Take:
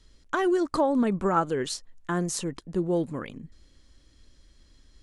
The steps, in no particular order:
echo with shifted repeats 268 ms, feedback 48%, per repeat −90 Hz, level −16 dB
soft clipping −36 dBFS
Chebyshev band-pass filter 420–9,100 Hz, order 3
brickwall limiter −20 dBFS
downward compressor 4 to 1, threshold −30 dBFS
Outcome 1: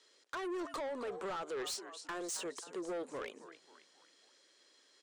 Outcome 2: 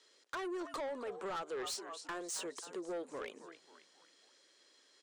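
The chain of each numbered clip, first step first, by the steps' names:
brickwall limiter, then echo with shifted repeats, then Chebyshev band-pass filter, then downward compressor, then soft clipping
echo with shifted repeats, then downward compressor, then Chebyshev band-pass filter, then soft clipping, then brickwall limiter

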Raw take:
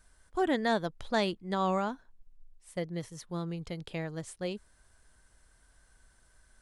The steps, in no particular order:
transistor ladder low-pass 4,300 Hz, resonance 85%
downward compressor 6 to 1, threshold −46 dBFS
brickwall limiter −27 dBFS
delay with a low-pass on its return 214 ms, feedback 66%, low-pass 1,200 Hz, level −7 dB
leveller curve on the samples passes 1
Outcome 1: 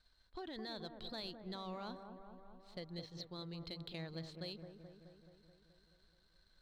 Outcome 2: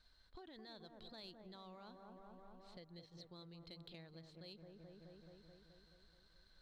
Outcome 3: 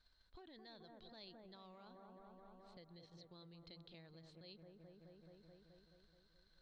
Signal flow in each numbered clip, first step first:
brickwall limiter, then transistor ladder low-pass, then downward compressor, then leveller curve on the samples, then delay with a low-pass on its return
brickwall limiter, then delay with a low-pass on its return, then downward compressor, then transistor ladder low-pass, then leveller curve on the samples
leveller curve on the samples, then delay with a low-pass on its return, then brickwall limiter, then downward compressor, then transistor ladder low-pass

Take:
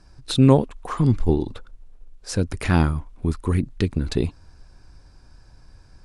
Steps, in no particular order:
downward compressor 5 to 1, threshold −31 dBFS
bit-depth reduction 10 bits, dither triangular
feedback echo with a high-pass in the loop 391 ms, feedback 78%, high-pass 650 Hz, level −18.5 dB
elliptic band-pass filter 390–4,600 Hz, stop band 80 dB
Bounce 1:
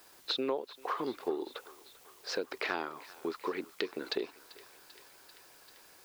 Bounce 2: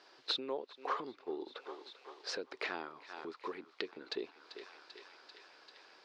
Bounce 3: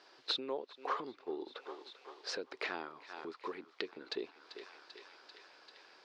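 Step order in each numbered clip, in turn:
elliptic band-pass filter, then bit-depth reduction, then downward compressor, then feedback echo with a high-pass in the loop
bit-depth reduction, then feedback echo with a high-pass in the loop, then downward compressor, then elliptic band-pass filter
feedback echo with a high-pass in the loop, then bit-depth reduction, then downward compressor, then elliptic band-pass filter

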